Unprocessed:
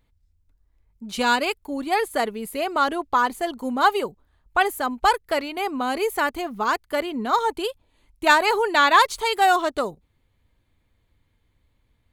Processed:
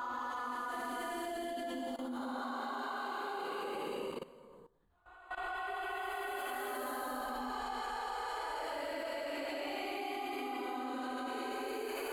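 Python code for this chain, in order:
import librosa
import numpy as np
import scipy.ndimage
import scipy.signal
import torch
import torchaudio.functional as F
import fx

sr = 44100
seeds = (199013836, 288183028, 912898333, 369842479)

y = fx.paulstretch(x, sr, seeds[0], factor=4.1, window_s=0.5, from_s=3.12)
y = fx.level_steps(y, sr, step_db=17)
y = y * librosa.db_to_amplitude(-5.5)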